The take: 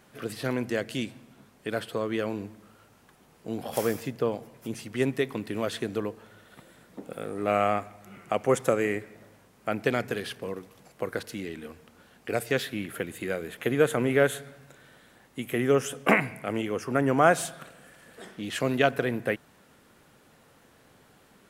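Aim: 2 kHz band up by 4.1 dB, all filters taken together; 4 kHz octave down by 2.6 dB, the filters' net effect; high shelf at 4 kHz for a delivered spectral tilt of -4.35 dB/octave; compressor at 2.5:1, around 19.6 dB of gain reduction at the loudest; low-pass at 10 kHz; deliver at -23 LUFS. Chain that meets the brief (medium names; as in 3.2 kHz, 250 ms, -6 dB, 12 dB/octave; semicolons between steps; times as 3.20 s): low-pass 10 kHz; peaking EQ 2 kHz +7 dB; treble shelf 4 kHz -3.5 dB; peaking EQ 4 kHz -5 dB; compression 2.5:1, threshold -46 dBFS; trim +21.5 dB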